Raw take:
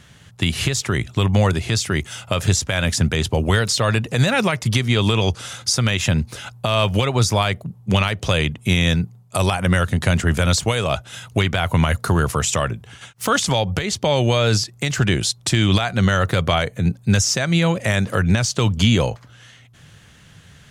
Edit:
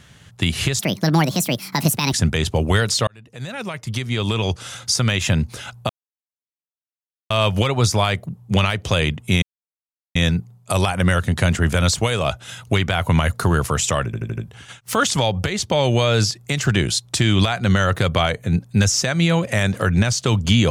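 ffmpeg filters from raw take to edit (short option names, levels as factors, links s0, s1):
-filter_complex "[0:a]asplit=10[s0][s1][s2][s3][s4][s5][s6][s7][s8][s9];[s0]atrim=end=0.794[s10];[s1]atrim=start=0.79:end=2.91,asetpts=PTS-STARTPTS,asetrate=70119,aresample=44100[s11];[s2]atrim=start=2.906:end=3.86,asetpts=PTS-STARTPTS,afade=t=out:st=0.95:d=0.004:c=hsin[s12];[s3]atrim=start=3.86:end=6.68,asetpts=PTS-STARTPTS,afade=t=in:d=1.87,afade=t=out:st=2.816:d=0.004:c=hsin,apad=pad_dur=1.41[s13];[s4]atrim=start=6.68:end=8.8,asetpts=PTS-STARTPTS,afade=t=in:d=0.004:c=hsin,afade=t=out:st=2.116:d=0.004:c=hsin,apad=pad_dur=0.73[s14];[s5]atrim=start=8.8:end=12.782,asetpts=PTS-STARTPTS,afade=t=in:d=0.004:c=hsin[s15];[s6]atrim=start=12.698:end=12.782[s16];[s7]atrim=start=12.698:end=12.782[s17];[s8]atrim=start=12.698:end=12.782[s18];[s9]atrim=start=12.698[s19];[s10][s11]acrossfade=d=0.004:c1=hsin:c2=hsin[s20];[s12][s13][s14][s15]concat=n=4:v=0:a=1[s21];[s20][s21]acrossfade=d=0.004:c1=hsin:c2=hsin[s22];[s22][s16]acrossfade=d=0.004:c1=hsin:c2=hsin[s23];[s23][s17]acrossfade=d=0.004:c1=hsin:c2=hsin[s24];[s24][s18]acrossfade=d=0.004:c1=hsin:c2=hsin[s25];[s25][s19]acrossfade=d=0.004:c1=hsin:c2=hsin"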